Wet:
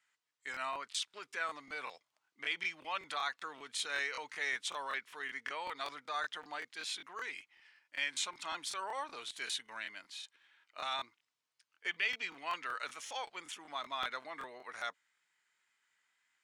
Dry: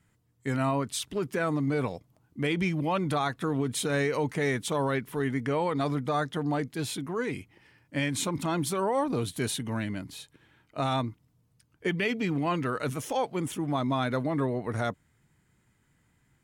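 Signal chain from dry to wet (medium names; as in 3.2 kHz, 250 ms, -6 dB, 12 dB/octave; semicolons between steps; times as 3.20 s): high-pass 1.4 kHz 12 dB/octave; treble shelf 5.2 kHz +9.5 dB; wow and flutter 19 cents; distance through air 120 m; crackling interface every 0.19 s, samples 1024, repeat, from 0.52 s; trim -1.5 dB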